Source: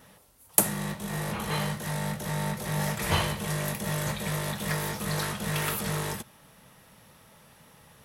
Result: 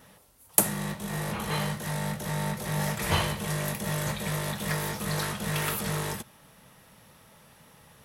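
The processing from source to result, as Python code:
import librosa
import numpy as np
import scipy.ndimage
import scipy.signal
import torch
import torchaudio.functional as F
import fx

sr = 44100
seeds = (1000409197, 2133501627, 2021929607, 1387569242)

y = fx.quant_dither(x, sr, seeds[0], bits=12, dither='none', at=(2.71, 3.59))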